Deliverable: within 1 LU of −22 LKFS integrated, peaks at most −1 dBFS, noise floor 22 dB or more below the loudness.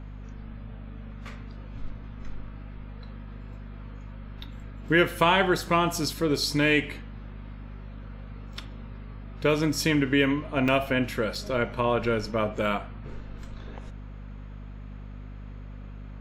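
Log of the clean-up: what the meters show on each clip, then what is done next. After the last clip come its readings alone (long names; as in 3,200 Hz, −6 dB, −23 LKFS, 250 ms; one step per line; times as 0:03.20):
number of dropouts 2; longest dropout 3.8 ms; mains hum 50 Hz; hum harmonics up to 250 Hz; level of the hum −38 dBFS; integrated loudness −25.0 LKFS; sample peak −8.0 dBFS; target loudness −22.0 LKFS
→ repair the gap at 0:10.68/0:11.35, 3.8 ms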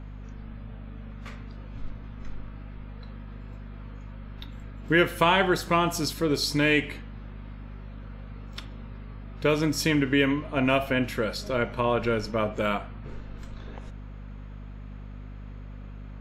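number of dropouts 0; mains hum 50 Hz; hum harmonics up to 250 Hz; level of the hum −38 dBFS
→ hum removal 50 Hz, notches 5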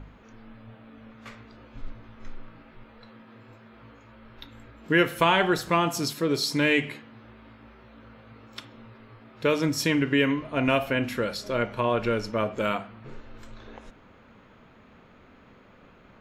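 mains hum none found; integrated loudness −25.0 LKFS; sample peak −7.5 dBFS; target loudness −22.0 LKFS
→ level +3 dB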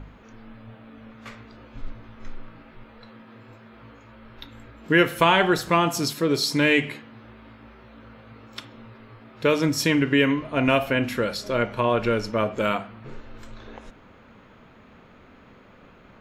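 integrated loudness −22.0 LKFS; sample peak −4.5 dBFS; background noise floor −51 dBFS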